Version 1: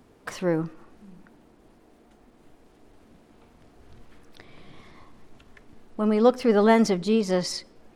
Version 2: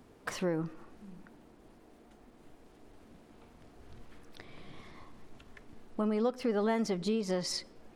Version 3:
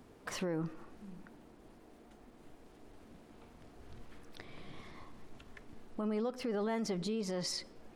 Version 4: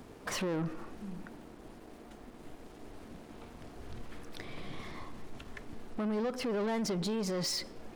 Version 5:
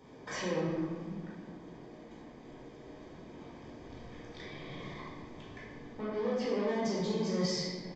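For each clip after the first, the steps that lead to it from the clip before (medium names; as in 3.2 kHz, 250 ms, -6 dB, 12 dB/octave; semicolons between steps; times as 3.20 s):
compression 4:1, threshold -27 dBFS, peak gain reduction 12 dB; trim -2 dB
peak limiter -28.5 dBFS, peak gain reduction 7.5 dB
waveshaping leveller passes 2
comb of notches 1.4 kHz; simulated room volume 1000 m³, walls mixed, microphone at 4.5 m; resampled via 16 kHz; trim -8 dB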